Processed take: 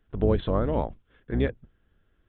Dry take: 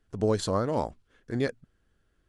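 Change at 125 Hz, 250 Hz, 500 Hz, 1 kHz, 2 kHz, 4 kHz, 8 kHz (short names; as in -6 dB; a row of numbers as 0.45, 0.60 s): +4.5 dB, +2.5 dB, +1.0 dB, -1.0 dB, -0.5 dB, -4.5 dB, under -35 dB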